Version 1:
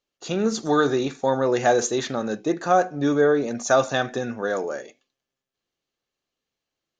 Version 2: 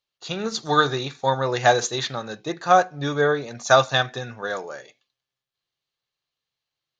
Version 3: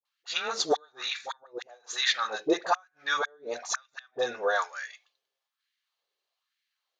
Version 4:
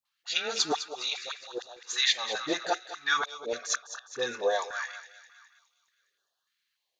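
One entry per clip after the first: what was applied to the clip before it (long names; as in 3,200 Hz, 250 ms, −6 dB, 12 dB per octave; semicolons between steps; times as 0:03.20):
octave-band graphic EQ 125/250/1,000/2,000/4,000 Hz +10/−6/+6/+4/+11 dB; expander for the loud parts 1.5 to 1, over −27 dBFS
gate with flip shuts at −12 dBFS, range −40 dB; auto-filter high-pass sine 1.1 Hz 410–1,900 Hz; all-pass dispersion highs, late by 54 ms, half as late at 660 Hz
feedback echo with a high-pass in the loop 206 ms, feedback 58%, high-pass 950 Hz, level −11 dB; notch on a step sequencer 3.4 Hz 420–2,200 Hz; level +2.5 dB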